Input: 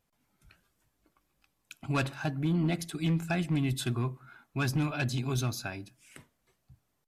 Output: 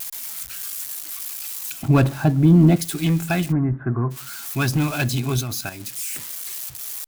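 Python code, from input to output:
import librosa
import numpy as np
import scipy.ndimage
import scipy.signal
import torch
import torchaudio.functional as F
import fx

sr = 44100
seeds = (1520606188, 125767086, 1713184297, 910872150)

y = x + 0.5 * 10.0 ** (-31.5 / 20.0) * np.diff(np.sign(x), prepend=np.sign(x[:1]))
y = fx.tilt_shelf(y, sr, db=7.5, hz=1100.0, at=(1.72, 2.77))
y = fx.steep_lowpass(y, sr, hz=1700.0, slope=48, at=(3.51, 4.1), fade=0.02)
y = fx.level_steps(y, sr, step_db=9, at=(5.4, 5.8), fade=0.02)
y = y * 10.0 ** (8.5 / 20.0)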